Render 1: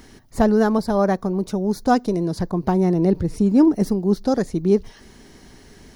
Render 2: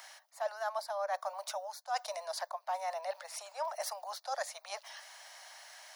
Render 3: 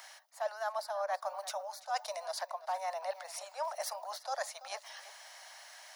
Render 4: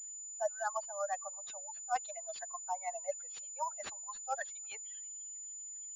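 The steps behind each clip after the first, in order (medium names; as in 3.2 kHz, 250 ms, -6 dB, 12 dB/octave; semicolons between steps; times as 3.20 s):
steep high-pass 590 Hz 96 dB/octave; reverse; compression 8:1, threshold -33 dBFS, peak gain reduction 18.5 dB; reverse
tape echo 336 ms, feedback 20%, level -14 dB, low-pass 4.7 kHz
expander on every frequency bin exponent 3; class-D stage that switches slowly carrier 7 kHz; trim +4.5 dB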